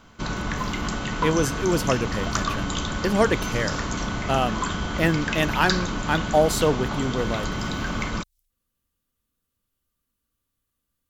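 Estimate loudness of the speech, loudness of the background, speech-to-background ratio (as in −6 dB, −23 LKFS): −25.0 LKFS, −28.0 LKFS, 3.0 dB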